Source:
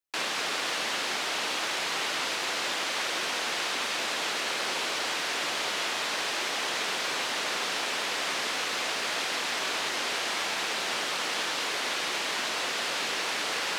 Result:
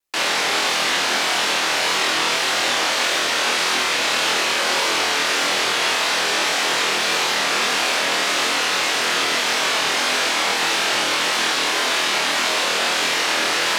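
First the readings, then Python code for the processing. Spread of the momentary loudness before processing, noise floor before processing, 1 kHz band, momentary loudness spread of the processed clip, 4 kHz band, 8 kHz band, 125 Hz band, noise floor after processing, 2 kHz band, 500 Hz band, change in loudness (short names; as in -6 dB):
0 LU, -32 dBFS, +11.0 dB, 0 LU, +10.5 dB, +10.5 dB, +10.5 dB, -21 dBFS, +10.5 dB, +10.5 dB, +10.5 dB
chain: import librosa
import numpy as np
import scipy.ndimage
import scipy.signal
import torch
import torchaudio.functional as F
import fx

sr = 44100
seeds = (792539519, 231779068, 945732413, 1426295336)

y = fx.room_flutter(x, sr, wall_m=4.2, rt60_s=0.44)
y = fx.vibrato(y, sr, rate_hz=1.7, depth_cents=44.0)
y = y * librosa.db_to_amplitude(8.0)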